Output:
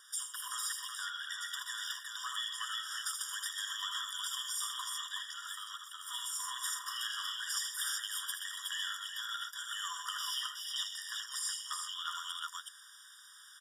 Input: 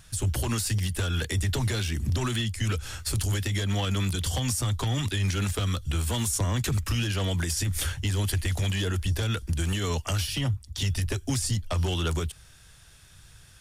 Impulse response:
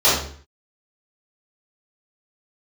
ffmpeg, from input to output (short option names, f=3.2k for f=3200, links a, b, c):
-filter_complex "[0:a]asplit=3[a][b][c];[a]afade=t=out:st=5.02:d=0.02[d];[b]asubboost=boost=11:cutoff=57,afade=t=in:st=5.02:d=0.02,afade=t=out:st=5.97:d=0.02[e];[c]afade=t=in:st=5.97:d=0.02[f];[d][e][f]amix=inputs=3:normalize=0,aecho=1:1:55|78|126|249|369:0.282|0.501|0.355|0.15|0.668,acompressor=threshold=-27dB:ratio=4,asettb=1/sr,asplit=3[g][h][i];[g]atrim=end=0.954[j];[h]atrim=start=0.95:end=1.42,asetpts=PTS-STARTPTS,afade=t=in:d=0.004:c=qsin,afade=t=out:st=0.466:d=0.004:c=qsin,highshelf=f=8k:g=-11[k];[i]atrim=start=1.416[l];[j][k]acrossfade=d=0.004:c1=hsin:c2=qsin[m];[m][l]acrossfade=d=0.004:c1=qsin:c2=hsin,asettb=1/sr,asplit=3[n][o][p];[n]atrim=end=6.624[q];[o]atrim=start=6.62:end=7.37,asetpts=PTS-STARTPTS,afade=t=in:d=0.004:c=qsin,afade=t=out:st=0.746:d=0.004:c=qsin,asplit=2[r][s];[s]adelay=35,volume=-7dB[t];[r][t]amix=inputs=2:normalize=0,atrim=end_sample=33075[u];[p]atrim=start=7.366[v];[q][u]acrossfade=d=0.004:c1=hsin:c2=qsin[w];[w][v]acrossfade=d=0.004:c1=qsin:c2=hsin,afftfilt=real='re*eq(mod(floor(b*sr/1024/960),2),1)':imag='im*eq(mod(floor(b*sr/1024/960),2),1)':win_size=1024:overlap=0.75"